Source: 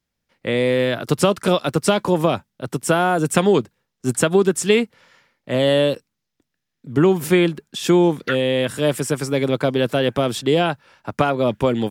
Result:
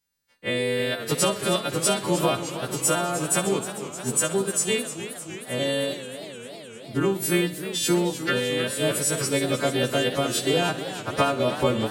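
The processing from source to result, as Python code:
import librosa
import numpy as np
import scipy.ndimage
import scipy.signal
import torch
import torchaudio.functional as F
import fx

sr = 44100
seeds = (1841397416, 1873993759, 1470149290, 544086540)

p1 = fx.freq_snap(x, sr, grid_st=2)
p2 = fx.rider(p1, sr, range_db=4, speed_s=0.5)
p3 = p2 + fx.echo_feedback(p2, sr, ms=62, feedback_pct=53, wet_db=-11.0, dry=0)
p4 = fx.transient(p3, sr, attack_db=2, sustain_db=-3)
p5 = fx.echo_warbled(p4, sr, ms=308, feedback_pct=74, rate_hz=2.8, cents=155, wet_db=-12.0)
y = F.gain(torch.from_numpy(p5), -6.5).numpy()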